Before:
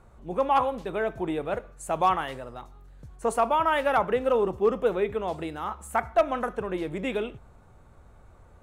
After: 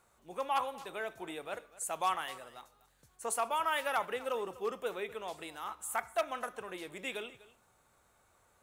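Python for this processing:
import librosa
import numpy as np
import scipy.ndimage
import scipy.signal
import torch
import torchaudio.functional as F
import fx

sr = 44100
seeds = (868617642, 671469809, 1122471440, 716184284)

y = fx.tilt_eq(x, sr, slope=4.0)
y = y + 10.0 ** (-19.0 / 20.0) * np.pad(y, (int(247 * sr / 1000.0), 0))[:len(y)]
y = y * 10.0 ** (-9.0 / 20.0)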